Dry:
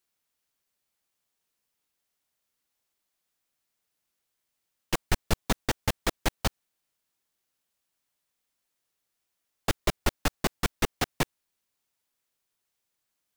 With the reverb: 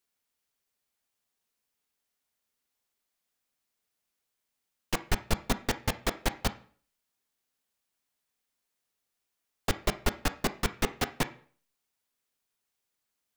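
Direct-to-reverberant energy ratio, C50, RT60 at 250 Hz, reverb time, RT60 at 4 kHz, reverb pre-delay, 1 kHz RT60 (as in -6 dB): 9.5 dB, 15.5 dB, 0.50 s, 0.45 s, 0.45 s, 3 ms, 0.45 s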